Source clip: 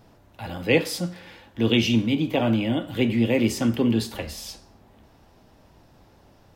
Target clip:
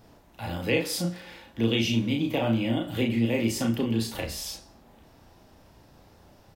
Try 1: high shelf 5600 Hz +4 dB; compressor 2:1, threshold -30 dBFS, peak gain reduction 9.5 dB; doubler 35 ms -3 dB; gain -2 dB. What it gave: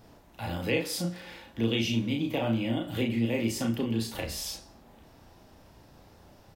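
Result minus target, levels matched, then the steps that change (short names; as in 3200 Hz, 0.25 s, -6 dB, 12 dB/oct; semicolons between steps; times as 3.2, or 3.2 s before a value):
compressor: peak gain reduction +3 dB
change: compressor 2:1, threshold -24 dBFS, peak gain reduction 6.5 dB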